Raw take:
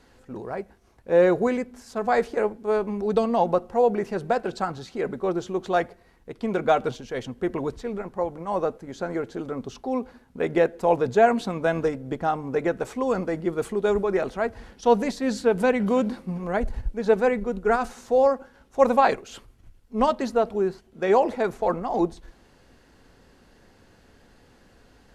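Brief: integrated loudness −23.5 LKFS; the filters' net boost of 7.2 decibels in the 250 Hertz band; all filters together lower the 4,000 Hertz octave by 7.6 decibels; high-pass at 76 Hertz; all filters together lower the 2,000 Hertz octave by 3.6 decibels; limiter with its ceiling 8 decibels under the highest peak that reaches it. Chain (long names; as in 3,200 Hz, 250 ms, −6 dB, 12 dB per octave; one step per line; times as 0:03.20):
high-pass filter 76 Hz
parametric band 250 Hz +9 dB
parametric band 2,000 Hz −3.5 dB
parametric band 4,000 Hz −8.5 dB
brickwall limiter −11.5 dBFS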